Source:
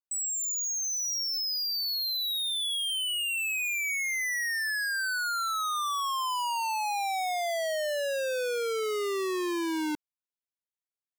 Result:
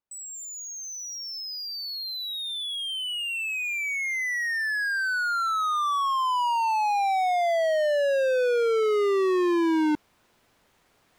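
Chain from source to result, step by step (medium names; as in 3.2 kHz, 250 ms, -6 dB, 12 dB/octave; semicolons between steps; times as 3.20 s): low-pass 1.2 kHz 6 dB/octave; reverse; upward compressor, threshold -48 dBFS; reverse; trim +8.5 dB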